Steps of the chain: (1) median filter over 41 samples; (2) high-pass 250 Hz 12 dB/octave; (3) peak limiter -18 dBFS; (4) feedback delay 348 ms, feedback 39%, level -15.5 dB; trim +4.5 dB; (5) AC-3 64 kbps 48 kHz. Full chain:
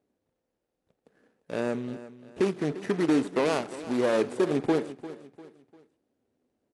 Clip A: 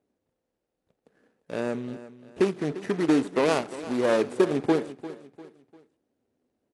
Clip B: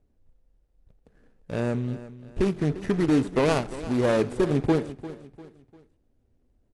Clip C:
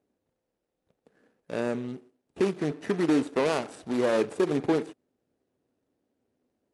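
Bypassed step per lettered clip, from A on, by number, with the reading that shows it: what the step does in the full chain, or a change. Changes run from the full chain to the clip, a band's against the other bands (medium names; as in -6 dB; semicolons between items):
3, crest factor change +2.5 dB; 2, 125 Hz band +8.5 dB; 4, momentary loudness spread change -6 LU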